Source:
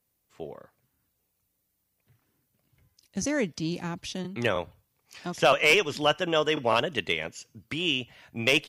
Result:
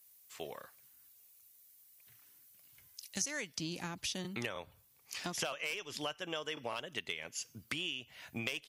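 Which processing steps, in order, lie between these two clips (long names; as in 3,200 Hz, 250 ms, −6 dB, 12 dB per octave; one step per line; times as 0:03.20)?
tilt shelving filter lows −9.5 dB, about 930 Hz, from 0:03.55 lows −3.5 dB
downward compressor 16 to 1, threshold −36 dBFS, peak gain reduction 23 dB
high-shelf EQ 6,800 Hz +7 dB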